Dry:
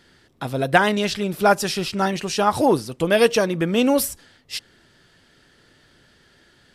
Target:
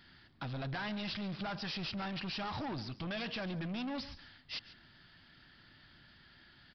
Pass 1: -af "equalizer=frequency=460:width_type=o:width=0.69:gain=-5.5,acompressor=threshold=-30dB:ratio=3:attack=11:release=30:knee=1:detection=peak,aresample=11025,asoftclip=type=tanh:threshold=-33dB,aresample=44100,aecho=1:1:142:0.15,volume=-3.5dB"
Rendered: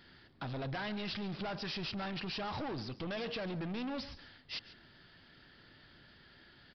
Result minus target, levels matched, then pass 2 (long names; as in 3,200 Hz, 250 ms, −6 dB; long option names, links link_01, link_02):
500 Hz band +3.5 dB
-af "equalizer=frequency=460:width_type=o:width=0.69:gain=-16,acompressor=threshold=-30dB:ratio=3:attack=11:release=30:knee=1:detection=peak,aresample=11025,asoftclip=type=tanh:threshold=-33dB,aresample=44100,aecho=1:1:142:0.15,volume=-3.5dB"